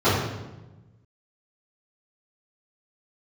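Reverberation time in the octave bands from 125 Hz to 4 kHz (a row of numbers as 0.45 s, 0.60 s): 1.7 s, 1.5 s, 1.2 s, 1.0 s, 0.90 s, 0.80 s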